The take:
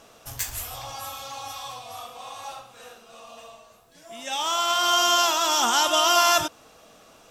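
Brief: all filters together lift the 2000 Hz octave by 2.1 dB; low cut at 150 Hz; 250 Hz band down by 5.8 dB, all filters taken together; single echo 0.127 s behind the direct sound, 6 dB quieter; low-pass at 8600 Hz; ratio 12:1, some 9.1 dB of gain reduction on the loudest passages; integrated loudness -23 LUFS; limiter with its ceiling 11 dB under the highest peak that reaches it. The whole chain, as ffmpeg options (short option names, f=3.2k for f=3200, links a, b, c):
-af "highpass=150,lowpass=8.6k,equalizer=f=250:t=o:g=-8.5,equalizer=f=2k:t=o:g=3.5,acompressor=threshold=-23dB:ratio=12,alimiter=level_in=0.5dB:limit=-24dB:level=0:latency=1,volume=-0.5dB,aecho=1:1:127:0.501,volume=11.5dB"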